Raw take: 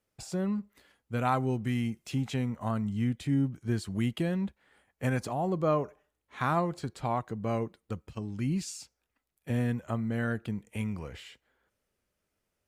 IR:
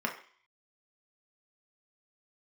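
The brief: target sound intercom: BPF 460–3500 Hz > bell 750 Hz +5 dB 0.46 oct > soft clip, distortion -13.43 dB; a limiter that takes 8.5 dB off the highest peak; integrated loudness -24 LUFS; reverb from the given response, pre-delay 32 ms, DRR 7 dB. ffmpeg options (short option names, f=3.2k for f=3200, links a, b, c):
-filter_complex "[0:a]alimiter=limit=-22.5dB:level=0:latency=1,asplit=2[a][b];[1:a]atrim=start_sample=2205,adelay=32[c];[b][c]afir=irnorm=-1:irlink=0,volume=-14dB[d];[a][d]amix=inputs=2:normalize=0,highpass=460,lowpass=3.5k,equalizer=f=750:t=o:w=0.46:g=5,asoftclip=threshold=-27.5dB,volume=15.5dB"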